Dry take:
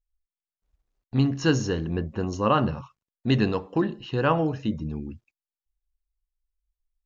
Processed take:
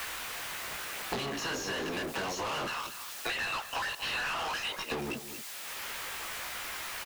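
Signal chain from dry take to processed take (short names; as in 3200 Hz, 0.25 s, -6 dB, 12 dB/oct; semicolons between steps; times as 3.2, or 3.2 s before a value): spectral limiter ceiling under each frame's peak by 18 dB; 2.65–4.92 HPF 1400 Hz 12 dB/oct; sample leveller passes 3; compressor, threshold -33 dBFS, peak gain reduction 20 dB; added noise blue -60 dBFS; chorus voices 4, 1.2 Hz, delay 18 ms, depth 3.1 ms; overdrive pedal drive 30 dB, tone 4200 Hz, clips at -25 dBFS; echo 0.228 s -17 dB; three-band squash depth 100%; gain -2.5 dB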